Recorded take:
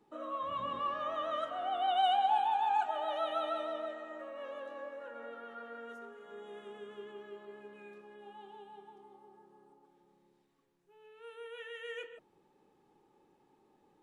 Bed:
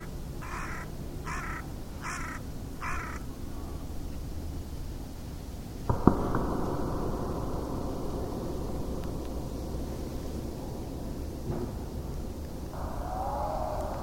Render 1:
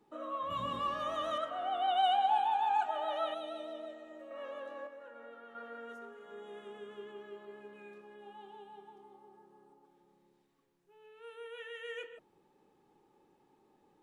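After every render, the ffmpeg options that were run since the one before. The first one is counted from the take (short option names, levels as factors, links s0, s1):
-filter_complex "[0:a]asettb=1/sr,asplit=3[s0][s1][s2];[s0]atrim=end=0.504[s3];[s1]atrim=start=0.5:end=1.38,asetpts=PTS-STARTPTS,afade=t=in:d=0.004:c=qsin,afade=t=out:st=0.876:d=0.004:c=qsin,bass=f=250:g=8,treble=f=4000:g=14[s4];[s2]atrim=start=1.376[s5];[s3][s4]acrossfade=d=0.004:c1=hsin:c2=qsin[s6];[s6][s5]acrossfade=d=0.004:c1=qsin:c2=hsin,asettb=1/sr,asplit=3[s7][s8][s9];[s7]atrim=end=3.344[s10];[s8]atrim=start=3.34:end=4.31,asetpts=PTS-STARTPTS,afade=t=in:d=0.004:c=qsin,afade=t=out:st=0.966:d=0.004:c=qsin,equalizer=f=1300:t=o:w=1.6:g=-13[s11];[s9]atrim=start=4.306[s12];[s10][s11]acrossfade=d=0.004:c1=hsin:c2=qsin[s13];[s13][s12]acrossfade=d=0.004:c1=qsin:c2=hsin,asplit=3[s14][s15][s16];[s14]atrim=end=4.872[s17];[s15]atrim=start=4.868:end=5.552,asetpts=PTS-STARTPTS,volume=0.562[s18];[s16]atrim=start=5.548[s19];[s17][s18]acrossfade=d=0.004:c1=hsin:c2=hsin[s20];[s20][s19]acrossfade=d=0.004:c1=hsin:c2=hsin"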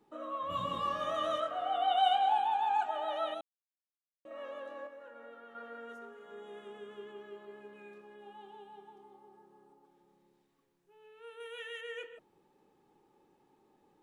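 -filter_complex "[0:a]asettb=1/sr,asplit=3[s0][s1][s2];[s0]atrim=end=0.474[s3];[s1]atrim=start=0.47:end=2.33,asetpts=PTS-STARTPTS,afade=t=in:d=0.004:c=qsin,afade=t=out:st=1.856:d=0.004:c=qsin,asplit=2[s4][s5];[s5]adelay=23,volume=0.708[s6];[s4][s6]amix=inputs=2:normalize=0,atrim=end_sample=82026[s7];[s2]atrim=start=2.326[s8];[s3][s7]acrossfade=d=0.004:c1=hsin:c2=qsin[s9];[s9][s8]acrossfade=d=0.004:c1=qsin:c2=hsin,asettb=1/sr,asplit=3[s10][s11][s12];[s10]atrim=end=11.404[s13];[s11]atrim=start=11.4:end=11.81,asetpts=PTS-STARTPTS,afade=t=in:d=0.004:c=qsin,afade=t=out:st=0.406:d=0.004:c=qsin,highshelf=f=2700:g=9[s14];[s12]atrim=start=11.806[s15];[s13][s14]acrossfade=d=0.004:c1=hsin:c2=qsin[s16];[s16][s15]acrossfade=d=0.004:c1=qsin:c2=hsin,asplit=3[s17][s18][s19];[s17]atrim=end=3.41,asetpts=PTS-STARTPTS,afade=t=out:st=3.406:d=0.004:c=hsin[s20];[s18]atrim=start=3.41:end=4.25,asetpts=PTS-STARTPTS,volume=0[s21];[s19]atrim=start=4.25,asetpts=PTS-STARTPTS,afade=t=in:d=0.004:c=hsin[s22];[s20][s21][s22]concat=n=3:v=0:a=1"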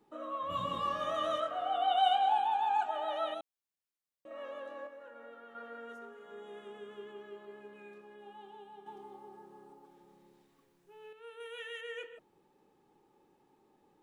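-filter_complex "[0:a]asettb=1/sr,asplit=3[s0][s1][s2];[s0]atrim=end=1.634[s3];[s1]atrim=start=1.63:end=2.93,asetpts=PTS-STARTPTS,afade=t=in:d=0.004:c=qsin,afade=t=out:st=1.296:d=0.004:c=qsin,bandreject=f=2000:w=7.7[s4];[s2]atrim=start=2.926[s5];[s3][s4]acrossfade=d=0.004:c1=hsin:c2=qsin[s6];[s6][s5]acrossfade=d=0.004:c1=qsin:c2=hsin,asettb=1/sr,asplit=3[s7][s8][s9];[s7]atrim=end=8.864[s10];[s8]atrim=start=8.86:end=11.13,asetpts=PTS-STARTPTS,afade=t=in:d=0.004:c=qsin,afade=t=out:st=2.266:d=0.004:c=qsin,acontrast=78[s11];[s9]atrim=start=11.126[s12];[s10][s11]acrossfade=d=0.004:c1=hsin:c2=qsin[s13];[s13][s12]acrossfade=d=0.004:c1=qsin:c2=hsin"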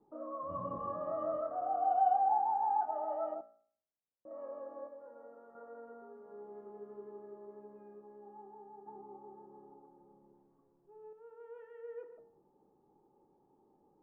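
-af "lowpass=f=1000:w=0.5412,lowpass=f=1000:w=1.3066,bandreject=f=57.94:t=h:w=4,bandreject=f=115.88:t=h:w=4,bandreject=f=173.82:t=h:w=4,bandreject=f=231.76:t=h:w=4,bandreject=f=289.7:t=h:w=4,bandreject=f=347.64:t=h:w=4,bandreject=f=405.58:t=h:w=4,bandreject=f=463.52:t=h:w=4,bandreject=f=521.46:t=h:w=4,bandreject=f=579.4:t=h:w=4,bandreject=f=637.34:t=h:w=4,bandreject=f=695.28:t=h:w=4,bandreject=f=753.22:t=h:w=4,bandreject=f=811.16:t=h:w=4,bandreject=f=869.1:t=h:w=4,bandreject=f=927.04:t=h:w=4,bandreject=f=984.98:t=h:w=4,bandreject=f=1042.92:t=h:w=4,bandreject=f=1100.86:t=h:w=4,bandreject=f=1158.8:t=h:w=4,bandreject=f=1216.74:t=h:w=4,bandreject=f=1274.68:t=h:w=4,bandreject=f=1332.62:t=h:w=4,bandreject=f=1390.56:t=h:w=4,bandreject=f=1448.5:t=h:w=4,bandreject=f=1506.44:t=h:w=4,bandreject=f=1564.38:t=h:w=4,bandreject=f=1622.32:t=h:w=4,bandreject=f=1680.26:t=h:w=4,bandreject=f=1738.2:t=h:w=4,bandreject=f=1796.14:t=h:w=4,bandreject=f=1854.08:t=h:w=4,bandreject=f=1912.02:t=h:w=4,bandreject=f=1969.96:t=h:w=4"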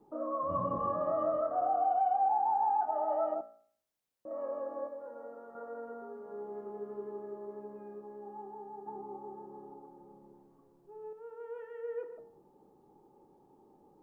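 -af "acontrast=86,alimiter=limit=0.075:level=0:latency=1:release=222"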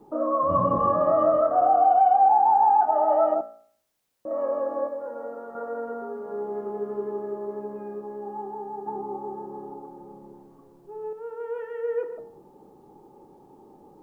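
-af "volume=3.55"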